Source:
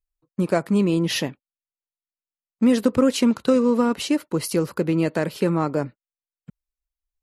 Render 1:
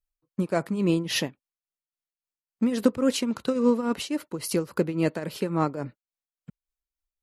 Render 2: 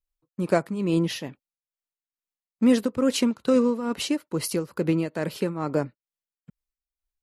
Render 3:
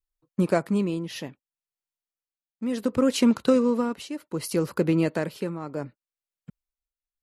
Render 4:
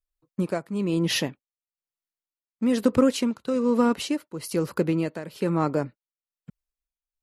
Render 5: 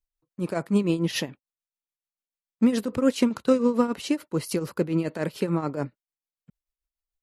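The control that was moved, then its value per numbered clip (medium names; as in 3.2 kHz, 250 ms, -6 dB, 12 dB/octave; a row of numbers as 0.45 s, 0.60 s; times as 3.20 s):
tremolo, rate: 3.6 Hz, 2.3 Hz, 0.67 Hz, 1.1 Hz, 6.9 Hz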